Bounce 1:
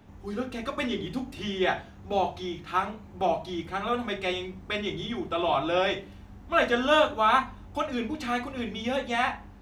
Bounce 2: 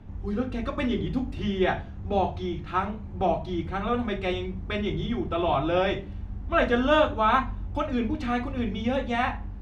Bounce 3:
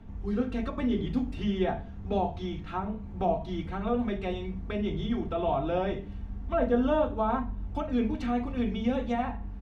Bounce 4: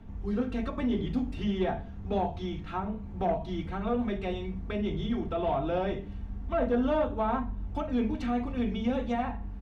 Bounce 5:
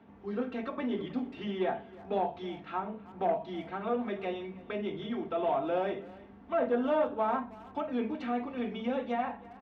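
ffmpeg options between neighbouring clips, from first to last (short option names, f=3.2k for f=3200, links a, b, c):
-af "aemphasis=mode=reproduction:type=bsi"
-filter_complex "[0:a]aecho=1:1:4.4:0.37,acrossover=split=920[a][b];[b]acompressor=threshold=-39dB:ratio=12[c];[a][c]amix=inputs=2:normalize=0,volume=-2.5dB"
-af "asoftclip=type=tanh:threshold=-18dB"
-filter_complex "[0:a]highpass=290,lowpass=3.3k,asplit=2[a][b];[b]adelay=320,highpass=300,lowpass=3.4k,asoftclip=type=hard:threshold=-27dB,volume=-19dB[c];[a][c]amix=inputs=2:normalize=0"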